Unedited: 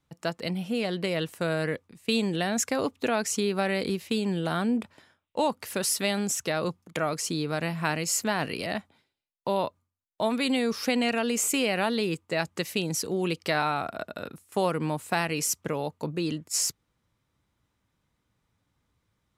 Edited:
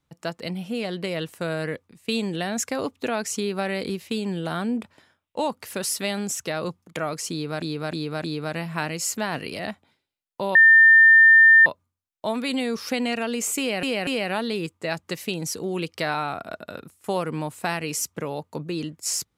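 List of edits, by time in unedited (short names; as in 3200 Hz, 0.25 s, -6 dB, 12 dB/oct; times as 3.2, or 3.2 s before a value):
7.31–7.62 loop, 4 plays
9.62 add tone 1800 Hz -9 dBFS 1.11 s
11.55 stutter 0.24 s, 3 plays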